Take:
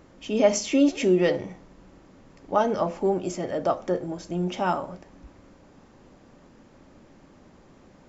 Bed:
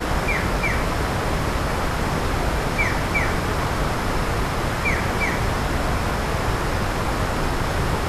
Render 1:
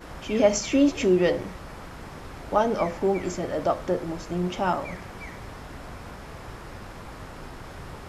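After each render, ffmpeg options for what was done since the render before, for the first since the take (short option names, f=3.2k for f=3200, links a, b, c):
-filter_complex "[1:a]volume=-18dB[a];[0:a][a]amix=inputs=2:normalize=0"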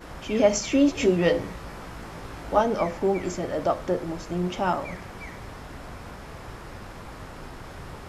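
-filter_complex "[0:a]asettb=1/sr,asplit=3[a][b][c];[a]atrim=end=0.954[d];[b]atrim=start=0.95:end=2.61,asetpts=PTS-STARTPTS,afade=t=in:d=0.004:c=qsin,afade=t=out:st=1.656:d=0.004:c=qsin,asplit=2[e][f];[f]adelay=18,volume=-3.5dB[g];[e][g]amix=inputs=2:normalize=0,atrim=end_sample=73206[h];[c]atrim=start=2.606[i];[d][h]acrossfade=d=0.004:c1=hsin:c2=qsin[j];[j][i]acrossfade=d=0.004:c1=qsin:c2=hsin"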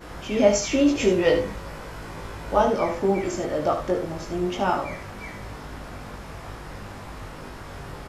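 -filter_complex "[0:a]asplit=2[a][b];[b]adelay=20,volume=-3.5dB[c];[a][c]amix=inputs=2:normalize=0,aecho=1:1:73:0.398"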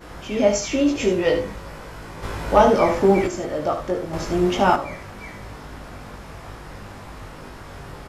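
-filter_complex "[0:a]asplit=3[a][b][c];[a]afade=t=out:st=2.22:d=0.02[d];[b]acontrast=74,afade=t=in:st=2.22:d=0.02,afade=t=out:st=3.26:d=0.02[e];[c]afade=t=in:st=3.26:d=0.02[f];[d][e][f]amix=inputs=3:normalize=0,asettb=1/sr,asplit=3[g][h][i];[g]atrim=end=4.134[j];[h]atrim=start=4.13:end=4.76,asetpts=PTS-STARTPTS,afade=t=in:d=0.004:c=qsin,afade=t=out:st=0.626:d=0.004:c=qsin,acontrast=69[k];[i]atrim=start=4.756[l];[j][k]acrossfade=d=0.004:c1=hsin:c2=qsin[m];[m][l]acrossfade=d=0.004:c1=qsin:c2=hsin"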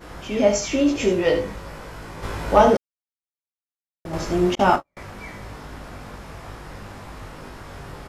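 -filter_complex "[0:a]asettb=1/sr,asplit=3[a][b][c];[a]atrim=end=4.554[d];[b]atrim=start=4.55:end=4.97,asetpts=PTS-STARTPTS,afade=t=in:d=0.004:c=qsin,afade=t=out:st=0.416:d=0.004:c=qsin,agate=range=-46dB:threshold=-24dB:ratio=16:release=100:detection=peak[e];[c]atrim=start=4.966[f];[d][e]acrossfade=d=0.004:c1=hsin:c2=qsin[g];[g][f]acrossfade=d=0.004:c1=qsin:c2=hsin,asplit=3[h][i][j];[h]atrim=end=2.77,asetpts=PTS-STARTPTS,afade=t=out:st=2.766:d=0.004:c=hsin[k];[i]atrim=start=2.77:end=4.05,asetpts=PTS-STARTPTS,volume=0[l];[j]atrim=start=4.05,asetpts=PTS-STARTPTS,afade=t=in:d=0.004:c=hsin[m];[k][l][m]concat=n=3:v=0:a=1"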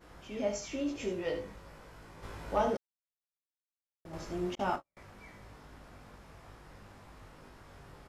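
-af "volume=-15.5dB"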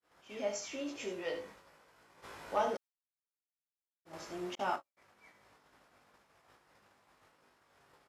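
-af "agate=range=-33dB:threshold=-45dB:ratio=3:detection=peak,highpass=f=590:p=1"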